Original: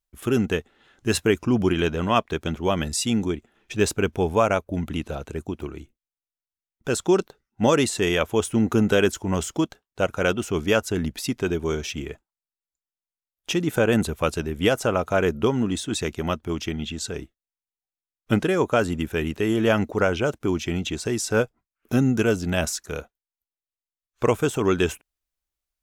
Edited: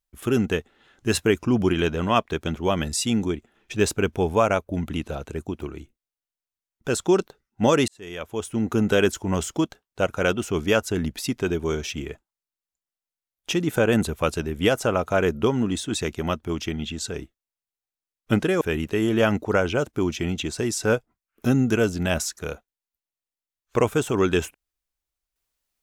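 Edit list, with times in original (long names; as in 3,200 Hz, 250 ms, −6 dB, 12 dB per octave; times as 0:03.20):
0:07.88–0:09.01: fade in linear
0:18.61–0:19.08: remove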